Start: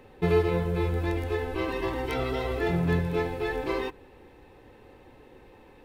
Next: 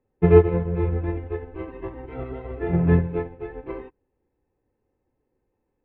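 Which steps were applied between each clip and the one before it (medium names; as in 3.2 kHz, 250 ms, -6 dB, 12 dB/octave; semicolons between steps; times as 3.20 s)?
low-pass 2.5 kHz 24 dB/octave; tilt shelf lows +5 dB, about 710 Hz; upward expansion 2.5:1, over -39 dBFS; trim +8.5 dB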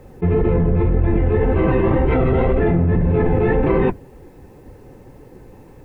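octave divider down 1 oct, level 0 dB; flange 1.9 Hz, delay 1.3 ms, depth 9.2 ms, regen -34%; level flattener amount 100%; trim -5 dB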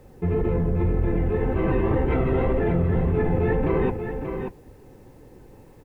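word length cut 10-bit, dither none; on a send: delay 583 ms -7 dB; on the sum: trim -6.5 dB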